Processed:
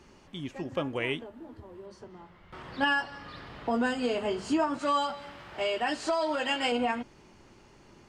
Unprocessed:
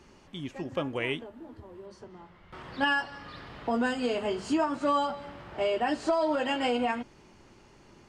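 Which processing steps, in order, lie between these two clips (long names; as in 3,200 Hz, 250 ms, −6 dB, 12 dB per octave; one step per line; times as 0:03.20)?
0:04.79–0:06.72: tilt shelving filter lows −5 dB, about 1,100 Hz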